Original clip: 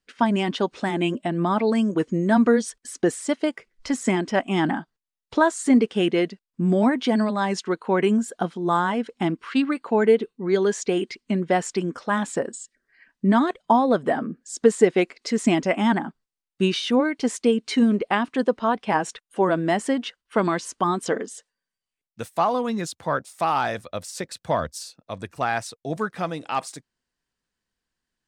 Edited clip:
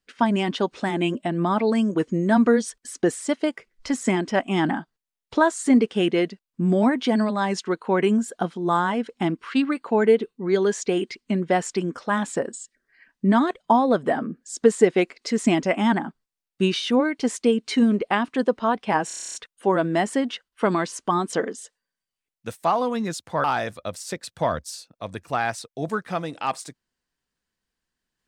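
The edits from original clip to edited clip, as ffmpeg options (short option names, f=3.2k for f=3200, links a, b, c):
-filter_complex "[0:a]asplit=11[a][b][c][d][e][f][g][h][i][j][k];[a]atrim=end=19.102[l];[b]atrim=start=19.068:end=19.102[m];[c]atrim=start=19.068:end=19.102[n];[d]atrim=start=19.068:end=19.102[o];[e]atrim=start=19.068:end=19.102[p];[f]atrim=start=19.068:end=19.102[q];[g]atrim=start=19.068:end=19.102[r];[h]atrim=start=19.068:end=19.102[s];[i]atrim=start=19.068:end=19.102[t];[j]atrim=start=19.068:end=23.172[u];[k]atrim=start=23.518[v];[l][m]acrossfade=d=0.004:c1=hsin:c2=hsin[w];[w][n]acrossfade=d=0.004:c1=hsin:c2=hsin[x];[x][o]acrossfade=d=0.004:c1=hsin:c2=hsin[y];[y][p]acrossfade=d=0.004:c1=hsin:c2=hsin[z];[z][q]acrossfade=d=0.004:c1=hsin:c2=hsin[aa];[aa][r]acrossfade=d=0.004:c1=hsin:c2=hsin[ab];[ab][s]acrossfade=d=0.004:c1=hsin:c2=hsin[ac];[ac][t]acrossfade=d=0.004:c1=hsin:c2=hsin[ad];[ad][u]acrossfade=d=0.004:c1=hsin:c2=hsin[ae];[ae][v]acrossfade=d=0.004:c1=hsin:c2=hsin"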